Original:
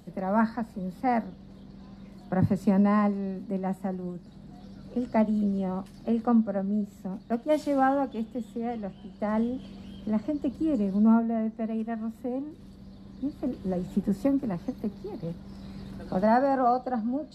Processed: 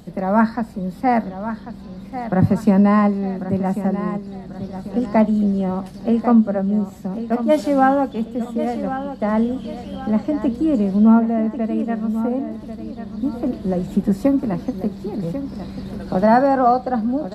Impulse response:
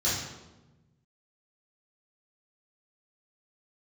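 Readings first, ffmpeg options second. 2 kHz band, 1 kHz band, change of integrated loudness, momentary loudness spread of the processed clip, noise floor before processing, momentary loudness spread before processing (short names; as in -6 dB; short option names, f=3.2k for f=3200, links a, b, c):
+9.0 dB, +8.5 dB, +8.5 dB, 15 LU, -49 dBFS, 20 LU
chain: -af "aecho=1:1:1092|2184|3276|4368:0.282|0.113|0.0451|0.018,volume=8.5dB"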